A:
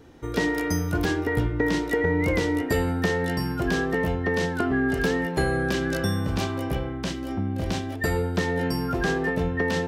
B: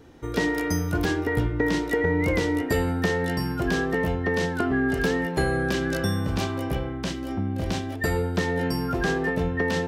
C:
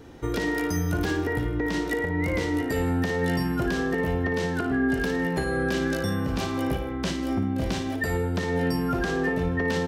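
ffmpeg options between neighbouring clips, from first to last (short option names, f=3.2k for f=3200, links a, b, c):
-af anull
-af "alimiter=limit=-21dB:level=0:latency=1:release=362,aecho=1:1:57|110|157:0.355|0.15|0.133,volume=3.5dB"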